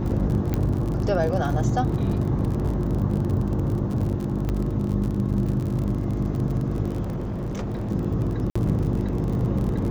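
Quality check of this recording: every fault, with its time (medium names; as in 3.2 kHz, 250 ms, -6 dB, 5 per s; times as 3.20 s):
crackle 47 per s -29 dBFS
hum 50 Hz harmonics 7 -28 dBFS
0.54 s: pop -12 dBFS
4.49 s: pop -15 dBFS
7.02–7.92 s: clipped -25.5 dBFS
8.50–8.55 s: dropout 55 ms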